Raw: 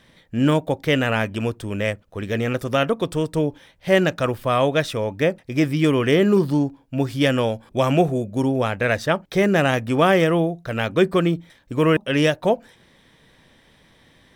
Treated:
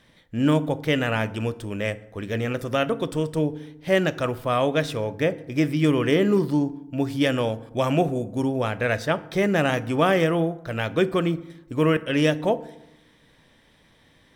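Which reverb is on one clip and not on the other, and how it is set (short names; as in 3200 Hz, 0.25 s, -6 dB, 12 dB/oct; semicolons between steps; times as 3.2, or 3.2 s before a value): FDN reverb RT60 0.87 s, low-frequency decay 1.35×, high-frequency decay 0.55×, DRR 13.5 dB; gain -3.5 dB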